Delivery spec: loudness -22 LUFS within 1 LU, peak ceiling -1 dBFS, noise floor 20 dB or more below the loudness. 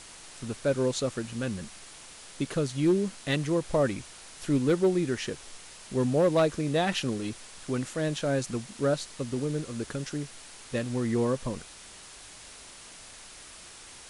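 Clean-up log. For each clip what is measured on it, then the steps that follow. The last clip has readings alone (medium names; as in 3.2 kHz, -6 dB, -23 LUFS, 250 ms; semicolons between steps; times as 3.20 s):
clipped samples 0.2%; clipping level -17.0 dBFS; noise floor -48 dBFS; noise floor target -50 dBFS; loudness -29.5 LUFS; peak level -17.0 dBFS; loudness target -22.0 LUFS
-> clip repair -17 dBFS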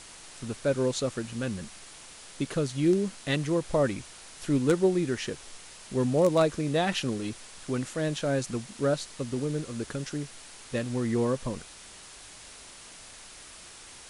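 clipped samples 0.0%; noise floor -48 dBFS; noise floor target -49 dBFS
-> noise print and reduce 6 dB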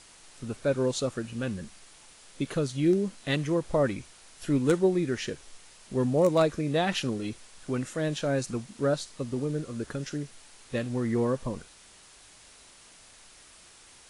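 noise floor -54 dBFS; loudness -29.0 LUFS; peak level -9.0 dBFS; loudness target -22.0 LUFS
-> trim +7 dB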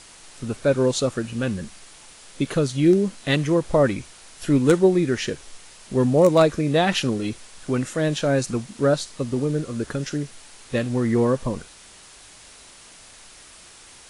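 loudness -22.0 LUFS; peak level -2.0 dBFS; noise floor -47 dBFS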